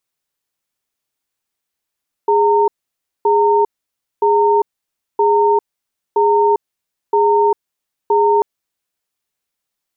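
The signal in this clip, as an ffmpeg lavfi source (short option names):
-f lavfi -i "aevalsrc='0.237*(sin(2*PI*413*t)+sin(2*PI*917*t))*clip(min(mod(t,0.97),0.4-mod(t,0.97))/0.005,0,1)':d=6.14:s=44100"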